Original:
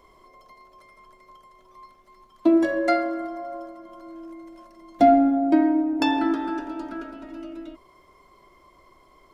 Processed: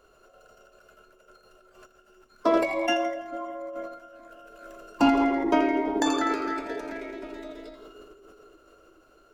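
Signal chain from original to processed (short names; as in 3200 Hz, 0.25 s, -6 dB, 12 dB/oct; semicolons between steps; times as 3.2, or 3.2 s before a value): split-band echo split 410 Hz, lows 0.434 s, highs 83 ms, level -9 dB; formant shift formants +5 st; gain -4.5 dB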